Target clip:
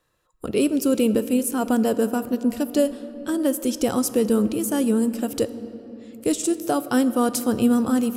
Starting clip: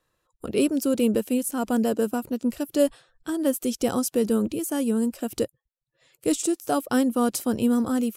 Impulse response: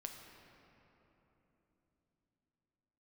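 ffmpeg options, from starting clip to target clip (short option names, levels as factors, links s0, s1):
-filter_complex "[0:a]alimiter=limit=0.224:level=0:latency=1:release=359,asplit=2[s0][s1];[1:a]atrim=start_sample=2205[s2];[s1][s2]afir=irnorm=-1:irlink=0,volume=0.841[s3];[s0][s3]amix=inputs=2:normalize=0"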